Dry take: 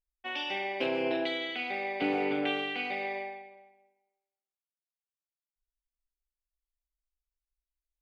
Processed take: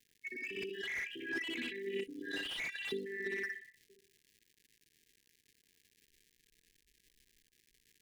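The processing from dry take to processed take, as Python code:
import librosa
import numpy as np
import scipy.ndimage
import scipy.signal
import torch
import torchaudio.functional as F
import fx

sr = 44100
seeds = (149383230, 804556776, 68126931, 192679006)

p1 = fx.spec_dropout(x, sr, seeds[0], share_pct=77)
p2 = fx.high_shelf(p1, sr, hz=3000.0, db=9.5)
p3 = p2 + fx.echo_feedback(p2, sr, ms=61, feedback_pct=44, wet_db=-4.0, dry=0)
p4 = fx.over_compress(p3, sr, threshold_db=-45.0, ratio=-1.0)
p5 = fx.formant_shift(p4, sr, semitones=-3)
p6 = fx.env_lowpass(p5, sr, base_hz=510.0, full_db=-39.0)
p7 = fx.dmg_crackle(p6, sr, seeds[1], per_s=240.0, level_db=-58.0)
p8 = fx.brickwall_bandstop(p7, sr, low_hz=480.0, high_hz=1600.0)
p9 = fx.slew_limit(p8, sr, full_power_hz=14.0)
y = p9 * librosa.db_to_amplitude(7.0)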